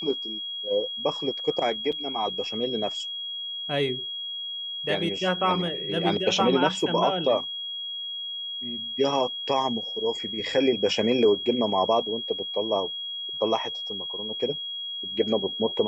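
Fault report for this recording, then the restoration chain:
whistle 3,300 Hz −31 dBFS
0:01.92–0:01.93: drop-out 5.4 ms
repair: notch filter 3,300 Hz, Q 30
repair the gap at 0:01.92, 5.4 ms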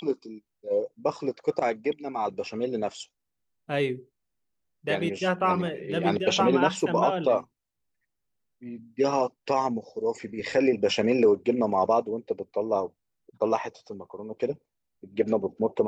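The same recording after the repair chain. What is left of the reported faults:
none of them is left

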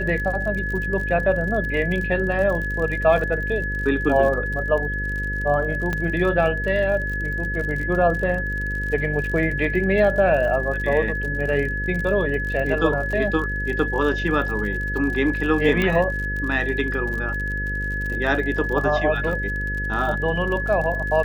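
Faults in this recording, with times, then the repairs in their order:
mains buzz 50 Hz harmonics 11 −28 dBFS
surface crackle 46 per second −29 dBFS
whistle 1,700 Hz −26 dBFS
0:05.93: click −12 dBFS
0:15.82: click −10 dBFS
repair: click removal
hum removal 50 Hz, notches 11
notch filter 1,700 Hz, Q 30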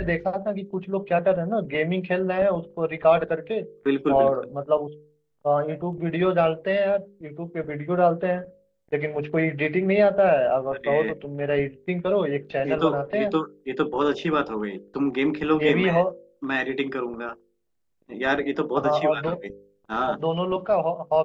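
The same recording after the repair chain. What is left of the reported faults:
0:05.93: click

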